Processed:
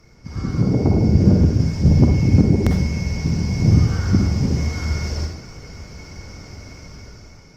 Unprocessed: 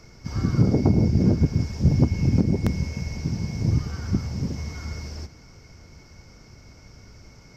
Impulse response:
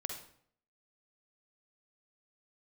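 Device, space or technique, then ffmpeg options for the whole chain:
speakerphone in a meeting room: -filter_complex "[1:a]atrim=start_sample=2205[a];[0:a][a]afir=irnorm=-1:irlink=0,dynaudnorm=f=260:g=7:m=11dB" -ar 48000 -c:a libopus -b:a 32k

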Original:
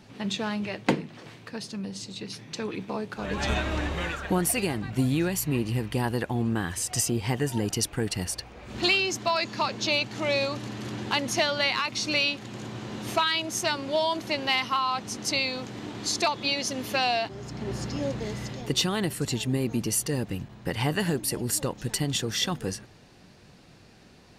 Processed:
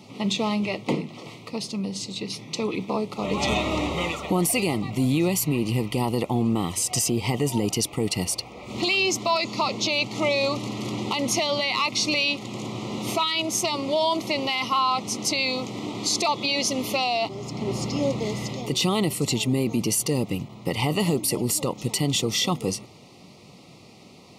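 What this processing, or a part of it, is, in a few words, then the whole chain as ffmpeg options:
PA system with an anti-feedback notch: -af "highpass=120,asuperstop=centerf=1600:order=8:qfactor=2.5,alimiter=limit=-20dB:level=0:latency=1:release=14,volume=6dB"

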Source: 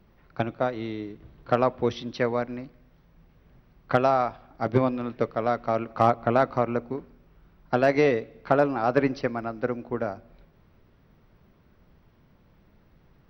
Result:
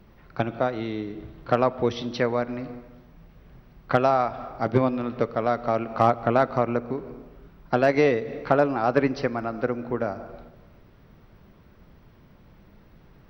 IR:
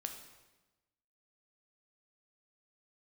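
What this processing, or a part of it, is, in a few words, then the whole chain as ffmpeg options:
ducked reverb: -filter_complex "[0:a]asplit=3[a][b][c];[1:a]atrim=start_sample=2205[d];[b][d]afir=irnorm=-1:irlink=0[e];[c]apad=whole_len=586427[f];[e][f]sidechaincompress=threshold=-39dB:ratio=5:attack=22:release=127,volume=2.5dB[g];[a][g]amix=inputs=2:normalize=0"

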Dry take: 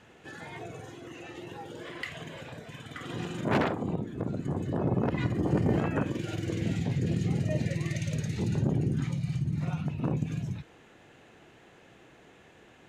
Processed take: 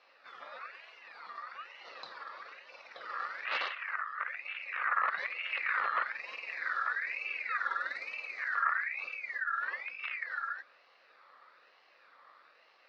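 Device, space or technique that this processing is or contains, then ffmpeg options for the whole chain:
voice changer toy: -af "aeval=exprs='val(0)*sin(2*PI*2000*n/s+2000*0.25/1.1*sin(2*PI*1.1*n/s))':c=same,highpass=520,equalizer=f=530:t=q:w=4:g=9,equalizer=f=1.2k:t=q:w=4:g=9,equalizer=f=2.2k:t=q:w=4:g=-5,equalizer=f=3.2k:t=q:w=4:g=-9,lowpass=f=4.4k:w=0.5412,lowpass=f=4.4k:w=1.3066,volume=-3dB"

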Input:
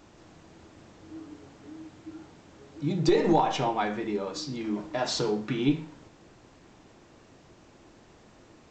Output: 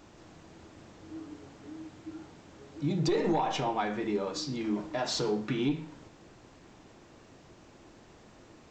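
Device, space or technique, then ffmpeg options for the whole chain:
soft clipper into limiter: -af "asoftclip=type=tanh:threshold=-15dB,alimiter=limit=-21dB:level=0:latency=1:release=243"

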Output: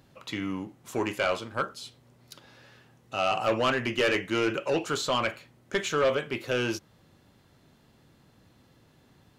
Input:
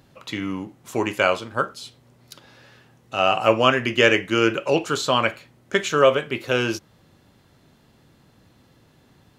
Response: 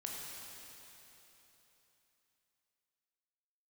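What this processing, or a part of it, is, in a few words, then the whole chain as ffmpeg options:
saturation between pre-emphasis and de-emphasis: -af "highshelf=f=7k:g=9.5,asoftclip=type=tanh:threshold=-14.5dB,highshelf=f=7k:g=-9.5,volume=-4dB"

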